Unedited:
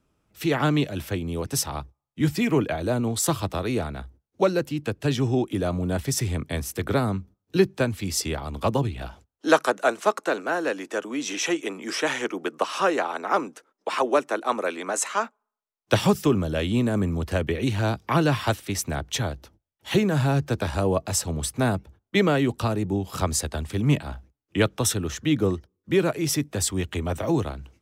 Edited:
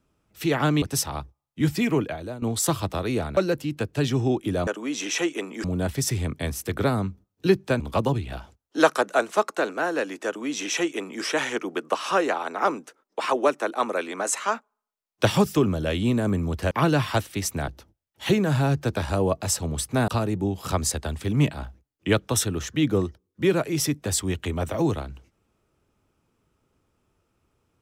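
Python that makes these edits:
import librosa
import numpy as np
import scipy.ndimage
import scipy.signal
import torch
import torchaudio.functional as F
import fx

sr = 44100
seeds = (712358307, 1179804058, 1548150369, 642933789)

y = fx.edit(x, sr, fx.cut(start_s=0.82, length_s=0.6),
    fx.fade_out_to(start_s=2.46, length_s=0.56, floor_db=-16.0),
    fx.cut(start_s=3.97, length_s=0.47),
    fx.cut(start_s=7.9, length_s=0.59),
    fx.duplicate(start_s=10.95, length_s=0.97, to_s=5.74),
    fx.cut(start_s=17.4, length_s=0.64),
    fx.cut(start_s=19.01, length_s=0.32),
    fx.cut(start_s=21.73, length_s=0.84), tone=tone)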